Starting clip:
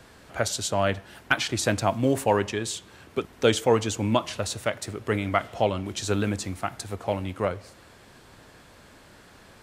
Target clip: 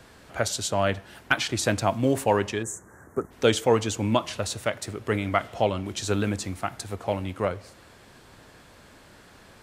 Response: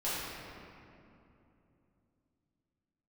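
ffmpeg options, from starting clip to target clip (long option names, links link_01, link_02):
-filter_complex "[0:a]asplit=3[link_01][link_02][link_03];[link_01]afade=type=out:start_time=2.62:duration=0.02[link_04];[link_02]asuperstop=centerf=3500:order=12:qfactor=0.8,afade=type=in:start_time=2.62:duration=0.02,afade=type=out:start_time=3.3:duration=0.02[link_05];[link_03]afade=type=in:start_time=3.3:duration=0.02[link_06];[link_04][link_05][link_06]amix=inputs=3:normalize=0"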